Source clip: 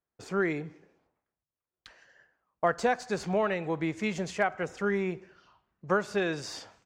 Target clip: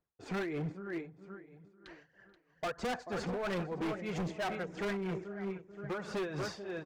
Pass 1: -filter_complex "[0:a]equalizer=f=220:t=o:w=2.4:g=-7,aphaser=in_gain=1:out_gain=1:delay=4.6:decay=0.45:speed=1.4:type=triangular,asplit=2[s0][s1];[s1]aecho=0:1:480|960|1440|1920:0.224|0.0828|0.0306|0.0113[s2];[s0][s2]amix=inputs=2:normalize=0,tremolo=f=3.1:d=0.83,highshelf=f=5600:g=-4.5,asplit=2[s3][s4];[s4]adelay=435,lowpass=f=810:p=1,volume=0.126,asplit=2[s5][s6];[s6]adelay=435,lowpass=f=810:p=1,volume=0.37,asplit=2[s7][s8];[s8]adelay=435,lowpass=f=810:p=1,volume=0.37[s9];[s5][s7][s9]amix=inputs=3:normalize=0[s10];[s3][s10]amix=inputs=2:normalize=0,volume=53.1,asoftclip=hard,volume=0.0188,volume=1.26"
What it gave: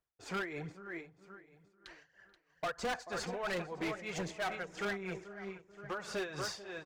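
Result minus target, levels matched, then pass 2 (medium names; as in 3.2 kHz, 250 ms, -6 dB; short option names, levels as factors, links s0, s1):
8 kHz band +7.0 dB; 250 Hz band -4.0 dB
-filter_complex "[0:a]equalizer=f=220:t=o:w=2.4:g=2.5,aphaser=in_gain=1:out_gain=1:delay=4.6:decay=0.45:speed=1.4:type=triangular,asplit=2[s0][s1];[s1]aecho=0:1:480|960|1440|1920:0.224|0.0828|0.0306|0.0113[s2];[s0][s2]amix=inputs=2:normalize=0,tremolo=f=3.1:d=0.83,highshelf=f=5600:g=-16,asplit=2[s3][s4];[s4]adelay=435,lowpass=f=810:p=1,volume=0.126,asplit=2[s5][s6];[s6]adelay=435,lowpass=f=810:p=1,volume=0.37,asplit=2[s7][s8];[s8]adelay=435,lowpass=f=810:p=1,volume=0.37[s9];[s5][s7][s9]amix=inputs=3:normalize=0[s10];[s3][s10]amix=inputs=2:normalize=0,volume=53.1,asoftclip=hard,volume=0.0188,volume=1.26"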